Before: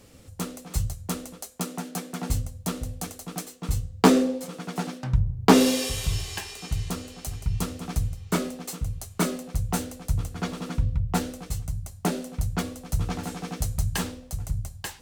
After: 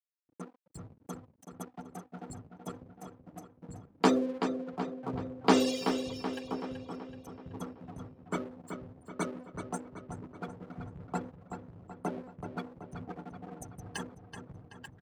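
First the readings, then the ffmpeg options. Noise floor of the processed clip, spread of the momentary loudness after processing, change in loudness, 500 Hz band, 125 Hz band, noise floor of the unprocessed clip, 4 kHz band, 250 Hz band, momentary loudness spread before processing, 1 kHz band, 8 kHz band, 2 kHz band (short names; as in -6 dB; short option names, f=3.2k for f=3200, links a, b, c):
-68 dBFS, 20 LU, -8.0 dB, -6.0 dB, -16.0 dB, -49 dBFS, -9.5 dB, -8.0 dB, 13 LU, -6.0 dB, -14.5 dB, -8.0 dB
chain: -filter_complex "[0:a]asplit=2[a][b];[b]aecho=0:1:1027|2054|3081|4108:0.224|0.0828|0.0306|0.0113[c];[a][c]amix=inputs=2:normalize=0,afftfilt=real='re*gte(hypot(re,im),0.0501)':imag='im*gte(hypot(re,im),0.0501)':win_size=1024:overlap=0.75,aeval=exprs='sgn(val(0))*max(abs(val(0))-0.00841,0)':c=same,highpass=220,asplit=2[d][e];[e]adelay=379,lowpass=f=4.7k:p=1,volume=-7.5dB,asplit=2[f][g];[g]adelay=379,lowpass=f=4.7k:p=1,volume=0.53,asplit=2[h][i];[i]adelay=379,lowpass=f=4.7k:p=1,volume=0.53,asplit=2[j][k];[k]adelay=379,lowpass=f=4.7k:p=1,volume=0.53,asplit=2[l][m];[m]adelay=379,lowpass=f=4.7k:p=1,volume=0.53,asplit=2[n][o];[o]adelay=379,lowpass=f=4.7k:p=1,volume=0.53[p];[f][h][j][l][n][p]amix=inputs=6:normalize=0[q];[d][q]amix=inputs=2:normalize=0,volume=-6dB"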